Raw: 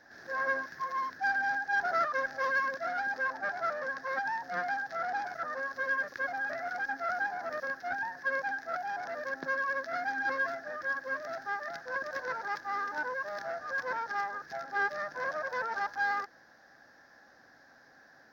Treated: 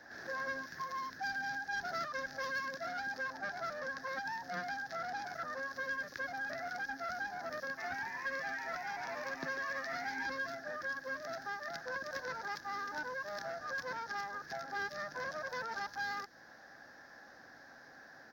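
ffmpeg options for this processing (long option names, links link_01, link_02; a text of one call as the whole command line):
ffmpeg -i in.wav -filter_complex "[0:a]asplit=3[link_01][link_02][link_03];[link_01]afade=type=out:start_time=7.77:duration=0.02[link_04];[link_02]asplit=9[link_05][link_06][link_07][link_08][link_09][link_10][link_11][link_12][link_13];[link_06]adelay=143,afreqshift=130,volume=-7.5dB[link_14];[link_07]adelay=286,afreqshift=260,volume=-11.7dB[link_15];[link_08]adelay=429,afreqshift=390,volume=-15.8dB[link_16];[link_09]adelay=572,afreqshift=520,volume=-20dB[link_17];[link_10]adelay=715,afreqshift=650,volume=-24.1dB[link_18];[link_11]adelay=858,afreqshift=780,volume=-28.3dB[link_19];[link_12]adelay=1001,afreqshift=910,volume=-32.4dB[link_20];[link_13]adelay=1144,afreqshift=1040,volume=-36.6dB[link_21];[link_05][link_14][link_15][link_16][link_17][link_18][link_19][link_20][link_21]amix=inputs=9:normalize=0,afade=type=in:start_time=7.77:duration=0.02,afade=type=out:start_time=10.26:duration=0.02[link_22];[link_03]afade=type=in:start_time=10.26:duration=0.02[link_23];[link_04][link_22][link_23]amix=inputs=3:normalize=0,acrossover=split=250|3000[link_24][link_25][link_26];[link_25]acompressor=threshold=-44dB:ratio=4[link_27];[link_24][link_27][link_26]amix=inputs=3:normalize=0,volume=3dB" out.wav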